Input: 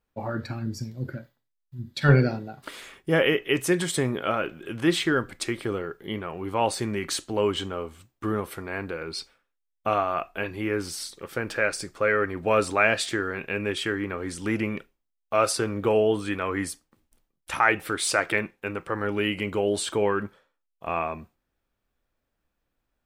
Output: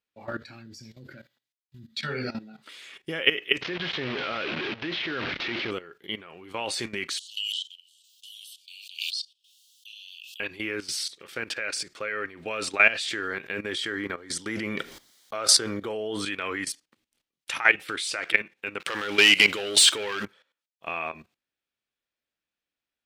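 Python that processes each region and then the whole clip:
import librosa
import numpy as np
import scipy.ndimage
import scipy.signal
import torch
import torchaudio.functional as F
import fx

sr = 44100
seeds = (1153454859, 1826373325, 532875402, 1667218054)

y = fx.chain(x, sr, fx.doubler(ms=18.0, db=-12.5),
    fx.small_body(hz=(220.0, 1300.0, 1900.0), ring_ms=60, db=9),
    fx.ensemble(), at=(1.87, 2.69))
y = fx.chain(y, sr, fx.delta_mod(bps=32000, step_db=-22.5),
    fx.air_absorb(metres=340.0), at=(3.61, 5.71))
y = fx.chain(y, sr, fx.steep_highpass(hz=2900.0, slope=96),
    fx.pre_swell(db_per_s=48.0), at=(7.18, 10.4))
y = fx.chain(y, sr, fx.peak_eq(hz=2600.0, db=-14.0, octaves=0.29),
    fx.sustainer(db_per_s=27.0), at=(13.27, 16.25))
y = fx.chain(y, sr, fx.tilt_eq(slope=2.0),
    fx.leveller(passes=3), at=(18.8, 20.25))
y = fx.weighting(y, sr, curve='D')
y = fx.level_steps(y, sr, step_db=15)
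y = y * librosa.db_to_amplitude(-1.0)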